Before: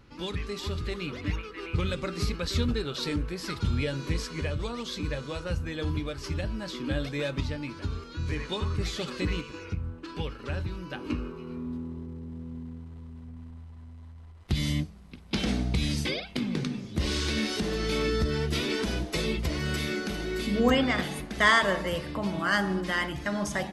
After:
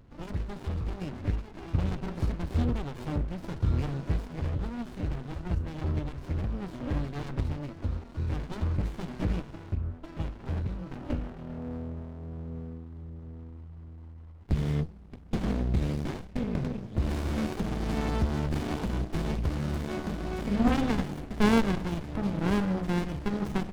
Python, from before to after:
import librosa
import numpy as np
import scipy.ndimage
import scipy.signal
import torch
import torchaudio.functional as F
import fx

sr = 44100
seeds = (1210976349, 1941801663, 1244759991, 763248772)

y = fx.high_shelf(x, sr, hz=3000.0, db=fx.steps((0.0, -11.0), (17.09, -3.0)))
y = fx.running_max(y, sr, window=65)
y = y * 10.0 ** (1.5 / 20.0)